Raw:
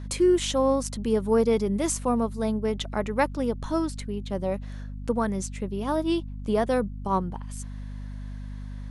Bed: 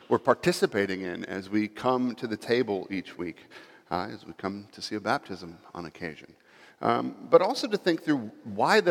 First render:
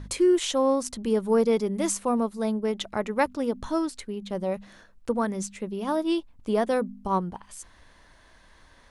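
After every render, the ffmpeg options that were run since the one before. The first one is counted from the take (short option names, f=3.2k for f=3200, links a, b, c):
-af "bandreject=f=50:t=h:w=4,bandreject=f=100:t=h:w=4,bandreject=f=150:t=h:w=4,bandreject=f=200:t=h:w=4,bandreject=f=250:t=h:w=4"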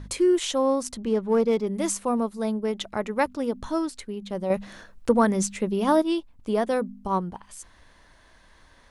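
-filter_complex "[0:a]asettb=1/sr,asplit=3[a][b][c];[a]atrim=end=1.004[d];[b]atrim=start=1:end=1.67,asetpts=PTS-STARTPTS,afade=t=in:d=0.004:c=qsin,afade=t=out:st=0.666:d=0.004:c=qsin,adynamicsmooth=sensitivity=7:basefreq=2.6k[e];[c]atrim=start=1.666[f];[d][e]acrossfade=d=0.004:c1=hsin:c2=qsin[g];[g][f]acrossfade=d=0.004:c1=qsin:c2=hsin,asettb=1/sr,asplit=3[h][i][j];[h]atrim=end=4.504[k];[i]atrim=start=4.5:end=6.02,asetpts=PTS-STARTPTS,afade=t=in:d=0.004:c=qsin,afade=t=out:st=1.516:d=0.004:c=qsin,acontrast=75[l];[j]atrim=start=6.016[m];[k][l]acrossfade=d=0.004:c1=hsin:c2=qsin[n];[n][m]acrossfade=d=0.004:c1=qsin:c2=hsin"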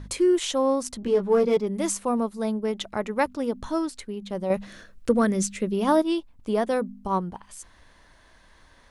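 -filter_complex "[0:a]asettb=1/sr,asplit=3[a][b][c];[a]atrim=end=1.014[d];[b]atrim=start=1.01:end=1.57,asetpts=PTS-STARTPTS,afade=t=in:d=0.004:c=qsin,afade=t=out:st=0.556:d=0.004:c=qsin,asplit=2[e][f];[f]adelay=16,volume=-3dB[g];[e][g]amix=inputs=2:normalize=0,atrim=end_sample=24696[h];[c]atrim=start=1.566[i];[d][h]acrossfade=d=0.004:c1=hsin:c2=qsin[j];[j][i]acrossfade=d=0.004:c1=qsin:c2=hsin,asettb=1/sr,asplit=3[k][l][m];[k]atrim=end=4.664[n];[l]atrim=start=4.66:end=5.74,asetpts=PTS-STARTPTS,afade=t=in:d=0.004:c=qsin,afade=t=out:st=1.076:d=0.004:c=qsin,equalizer=f=880:t=o:w=0.55:g=-10.5[o];[m]atrim=start=5.736[p];[n][o]acrossfade=d=0.004:c1=hsin:c2=qsin[q];[q][p]acrossfade=d=0.004:c1=qsin:c2=hsin"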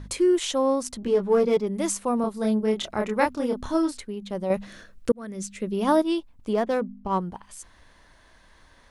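-filter_complex "[0:a]asettb=1/sr,asplit=3[a][b][c];[a]atrim=end=2.214[d];[b]atrim=start=2.21:end=4.01,asetpts=PTS-STARTPTS,afade=t=in:d=0.004:c=qsin,afade=t=out:st=1.796:d=0.004:c=qsin,asplit=2[e][f];[f]adelay=28,volume=-2.5dB[g];[e][g]amix=inputs=2:normalize=0,atrim=end_sample=79380[h];[c]atrim=start=4.006[i];[d][h]acrossfade=d=0.004:c1=hsin:c2=qsin[j];[j][i]acrossfade=d=0.004:c1=qsin:c2=hsin,asettb=1/sr,asplit=3[k][l][m];[k]atrim=end=6.534[n];[l]atrim=start=6.53:end=7.18,asetpts=PTS-STARTPTS,afade=t=in:d=0.004:c=qsin,afade=t=out:st=0.646:d=0.004:c=qsin,adynamicsmooth=sensitivity=5.5:basefreq=2.9k[o];[m]atrim=start=7.176[p];[n][o]acrossfade=d=0.004:c1=hsin:c2=qsin[q];[q][p]acrossfade=d=0.004:c1=qsin:c2=hsin,asplit=2[r][s];[r]atrim=end=5.12,asetpts=PTS-STARTPTS,afade=t=out:st=5.116:d=0.004:c=hsin[t];[s]atrim=start=5.12,asetpts=PTS-STARTPTS,afade=t=in:d=0.75[u];[t][u]concat=n=2:v=0:a=1"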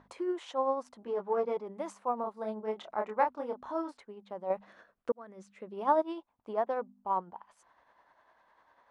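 -af "tremolo=f=10:d=0.42,bandpass=f=870:t=q:w=1.8:csg=0"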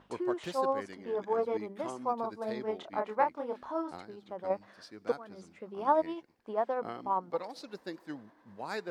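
-filter_complex "[1:a]volume=-16.5dB[a];[0:a][a]amix=inputs=2:normalize=0"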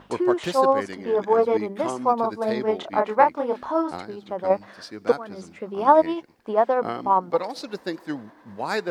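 -af "volume=11.5dB,alimiter=limit=-3dB:level=0:latency=1"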